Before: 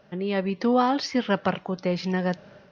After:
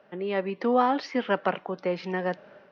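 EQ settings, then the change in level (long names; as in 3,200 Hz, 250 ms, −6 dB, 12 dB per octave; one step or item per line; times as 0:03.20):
three-way crossover with the lows and the highs turned down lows −16 dB, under 240 Hz, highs −14 dB, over 3,100 Hz
0.0 dB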